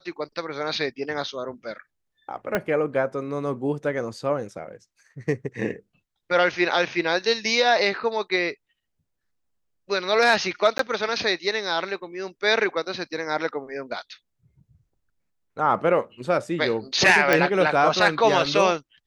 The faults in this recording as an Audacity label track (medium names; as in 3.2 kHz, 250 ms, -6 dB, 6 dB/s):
2.550000	2.550000	pop -9 dBFS
10.780000	10.790000	dropout 13 ms
17.330000	17.330000	pop -5 dBFS